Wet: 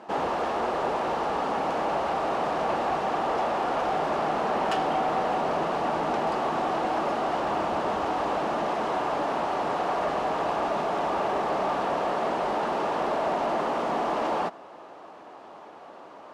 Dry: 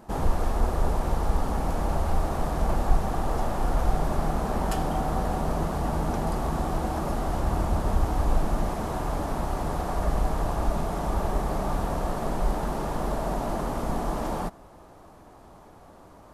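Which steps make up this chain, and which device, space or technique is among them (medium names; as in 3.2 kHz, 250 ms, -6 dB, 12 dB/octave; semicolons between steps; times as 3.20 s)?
intercom (band-pass 380–4000 Hz; peaking EQ 2.8 kHz +4.5 dB 0.3 oct; saturation -25.5 dBFS, distortion -19 dB); trim +7 dB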